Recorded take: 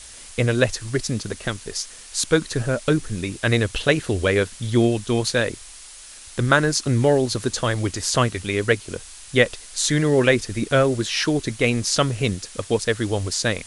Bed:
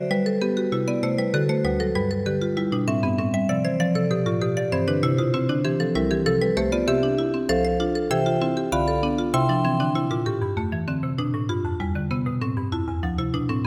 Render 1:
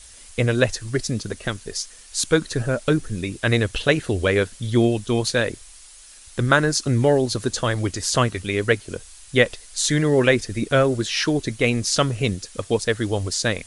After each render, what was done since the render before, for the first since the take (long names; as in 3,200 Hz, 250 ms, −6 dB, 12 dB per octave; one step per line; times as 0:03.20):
broadband denoise 6 dB, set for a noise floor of −42 dBFS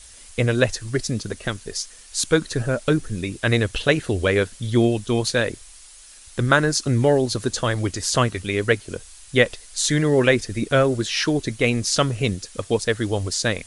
no processing that can be heard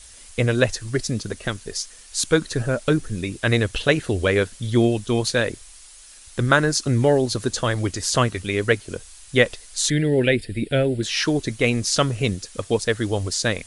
0:09.90–0:11.03: phaser with its sweep stopped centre 2,700 Hz, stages 4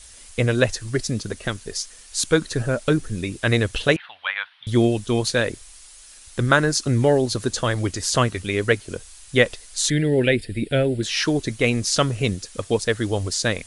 0:03.96–0:04.67: elliptic band-pass filter 850–3,500 Hz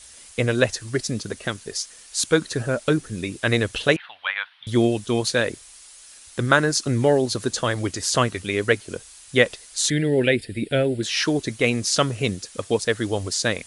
high-pass filter 130 Hz 6 dB per octave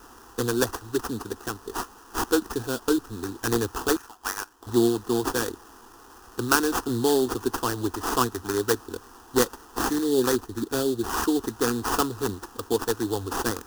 sample-rate reduction 4,000 Hz, jitter 20%
phaser with its sweep stopped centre 590 Hz, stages 6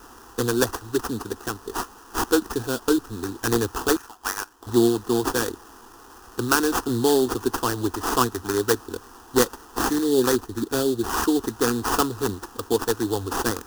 level +2.5 dB
brickwall limiter −3 dBFS, peak gain reduction 3 dB